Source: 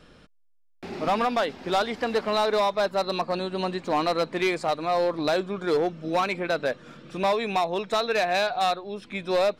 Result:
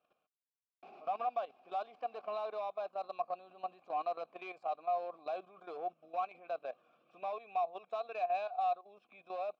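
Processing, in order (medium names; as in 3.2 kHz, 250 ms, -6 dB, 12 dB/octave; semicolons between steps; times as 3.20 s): level held to a coarse grid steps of 13 dB; vowel filter a; trim -3 dB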